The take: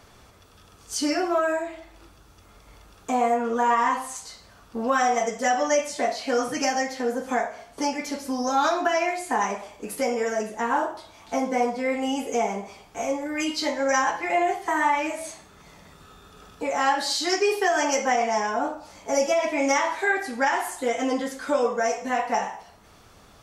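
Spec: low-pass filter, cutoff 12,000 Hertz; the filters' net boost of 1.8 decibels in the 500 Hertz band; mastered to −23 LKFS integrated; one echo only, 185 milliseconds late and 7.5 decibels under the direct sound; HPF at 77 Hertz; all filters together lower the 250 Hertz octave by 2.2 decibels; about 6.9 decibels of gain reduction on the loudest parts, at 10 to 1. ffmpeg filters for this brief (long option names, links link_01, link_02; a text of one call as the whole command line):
ffmpeg -i in.wav -af "highpass=77,lowpass=12000,equalizer=frequency=250:width_type=o:gain=-3.5,equalizer=frequency=500:width_type=o:gain=3,acompressor=threshold=-23dB:ratio=10,aecho=1:1:185:0.422,volume=5dB" out.wav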